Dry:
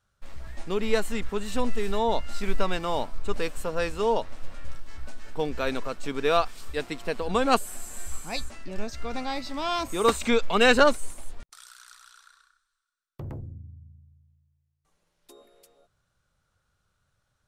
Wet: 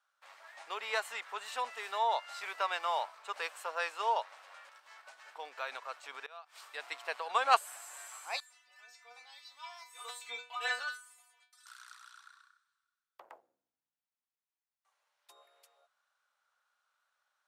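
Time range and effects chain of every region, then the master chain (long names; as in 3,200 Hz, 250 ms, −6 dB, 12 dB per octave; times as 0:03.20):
0:04.69–0:06.90: gate with flip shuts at −14 dBFS, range −24 dB + downward compressor 3 to 1, threshold −29 dBFS + low-shelf EQ 98 Hz +10.5 dB
0:08.40–0:11.66: spectral tilt +2.5 dB per octave + stiff-string resonator 240 Hz, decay 0.36 s, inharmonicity 0.002
whole clip: high-pass filter 750 Hz 24 dB per octave; high-shelf EQ 3,900 Hz −9.5 dB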